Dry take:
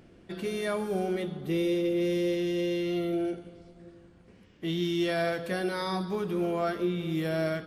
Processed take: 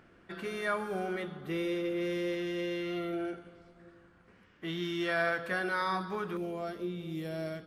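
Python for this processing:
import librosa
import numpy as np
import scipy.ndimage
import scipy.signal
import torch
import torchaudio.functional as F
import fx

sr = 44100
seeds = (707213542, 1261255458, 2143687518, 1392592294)

y = fx.peak_eq(x, sr, hz=1400.0, db=fx.steps((0.0, 13.5), (6.37, -3.5)), octaves=1.5)
y = y * 10.0 ** (-7.5 / 20.0)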